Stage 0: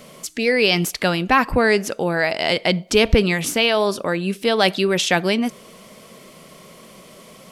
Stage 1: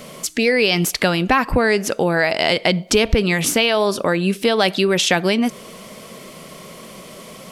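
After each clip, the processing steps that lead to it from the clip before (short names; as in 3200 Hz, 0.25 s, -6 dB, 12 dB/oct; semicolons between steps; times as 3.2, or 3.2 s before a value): compressor 3:1, threshold -20 dBFS, peak gain reduction 8.5 dB; gain +6 dB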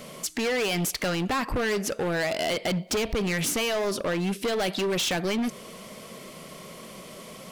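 hard clip -18.5 dBFS, distortion -7 dB; gain -5 dB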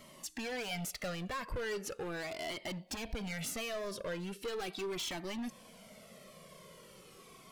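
cascading flanger falling 0.39 Hz; gain -8 dB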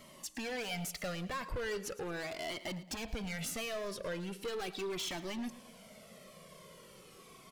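feedback echo 0.111 s, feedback 37%, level -16.5 dB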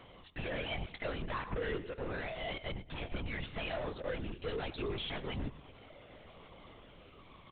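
LPC vocoder at 8 kHz whisper; gain +1 dB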